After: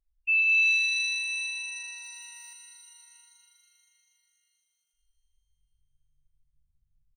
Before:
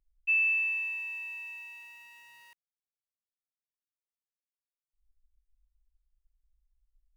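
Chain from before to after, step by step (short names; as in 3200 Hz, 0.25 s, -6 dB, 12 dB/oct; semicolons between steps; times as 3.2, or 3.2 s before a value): spectral gate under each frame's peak -30 dB strong; high shelf 3100 Hz +9 dB; echo 0.715 s -22 dB; shimmer reverb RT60 3.4 s, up +7 st, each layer -2 dB, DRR 5.5 dB; gain -2.5 dB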